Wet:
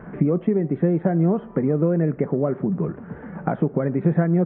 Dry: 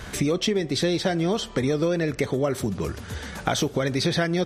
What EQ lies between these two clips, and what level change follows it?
Gaussian low-pass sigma 6.1 samples; resonant low shelf 120 Hz -9.5 dB, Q 3; +1.5 dB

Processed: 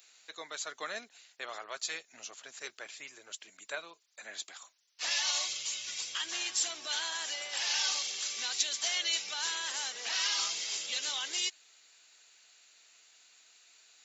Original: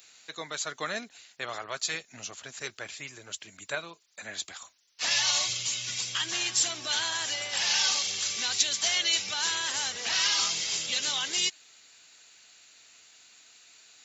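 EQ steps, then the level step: high-pass 350 Hz 12 dB/octave; -5.5 dB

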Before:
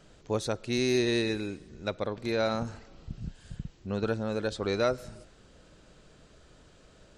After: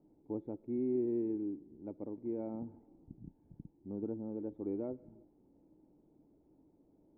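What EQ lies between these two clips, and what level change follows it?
dynamic bell 850 Hz, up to -5 dB, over -50 dBFS, Q 3.1; cascade formant filter u; bass shelf 77 Hz -10 dB; +2.0 dB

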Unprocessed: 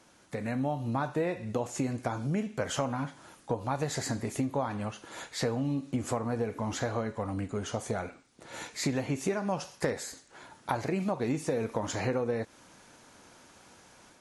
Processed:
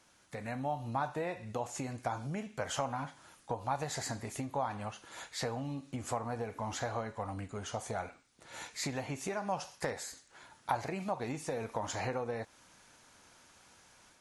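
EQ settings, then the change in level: peaking EQ 310 Hz -7 dB 2.8 oct; dynamic bell 780 Hz, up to +7 dB, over -51 dBFS, Q 1.6; -3.0 dB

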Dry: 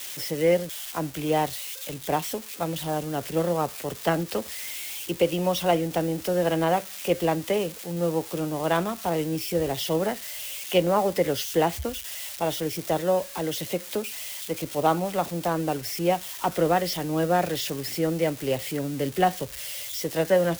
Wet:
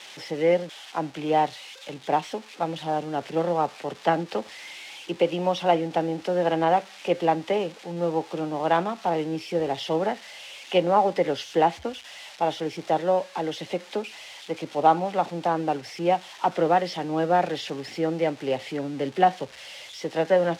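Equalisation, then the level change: band-pass 180–4000 Hz; peaking EQ 820 Hz +7 dB 0.31 oct; 0.0 dB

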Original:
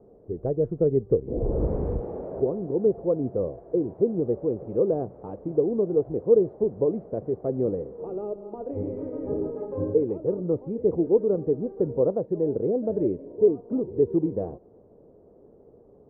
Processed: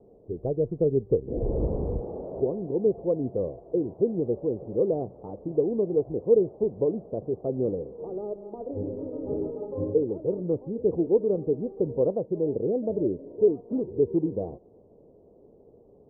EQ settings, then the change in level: low-pass 1 kHz 24 dB/octave; -1.5 dB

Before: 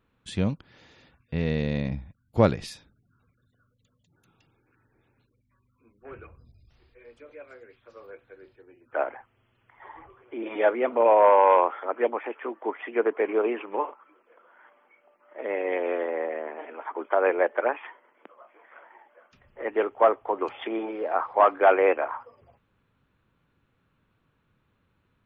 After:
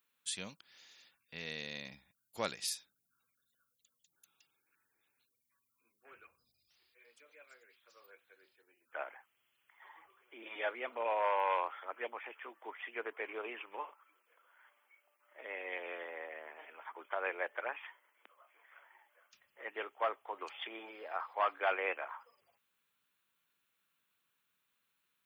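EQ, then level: differentiator; peaking EQ 190 Hz +3.5 dB 0.6 oct; treble shelf 6.4 kHz +4 dB; +4.0 dB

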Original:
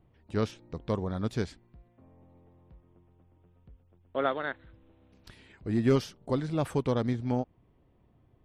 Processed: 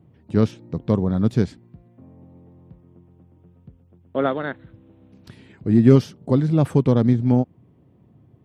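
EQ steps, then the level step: high-pass 96 Hz; peaking EQ 150 Hz +12.5 dB 3 oct; +2.5 dB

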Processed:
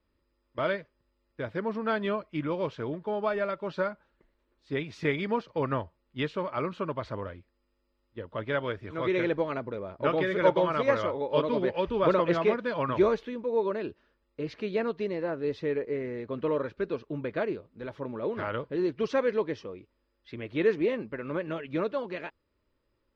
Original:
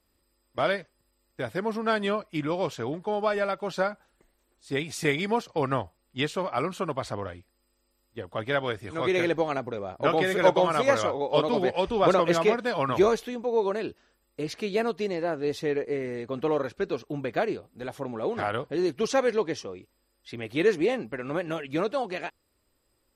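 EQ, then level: Butterworth band-stop 750 Hz, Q 5.1; distance through air 240 m; -1.5 dB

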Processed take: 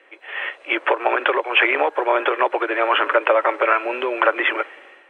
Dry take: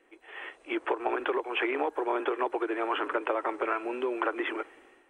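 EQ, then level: tone controls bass -12 dB, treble -9 dB; peaking EQ 570 Hz +9.5 dB 0.27 oct; peaking EQ 2.8 kHz +12 dB 3 oct; +5.0 dB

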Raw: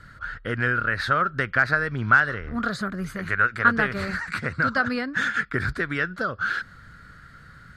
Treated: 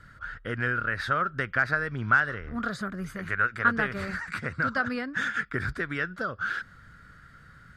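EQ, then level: band-stop 4.2 kHz, Q 10; -4.5 dB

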